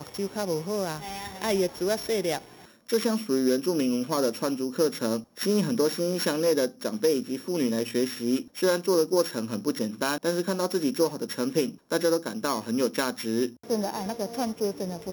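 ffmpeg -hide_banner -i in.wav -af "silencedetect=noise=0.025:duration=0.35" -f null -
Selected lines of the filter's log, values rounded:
silence_start: 2.38
silence_end: 2.90 | silence_duration: 0.51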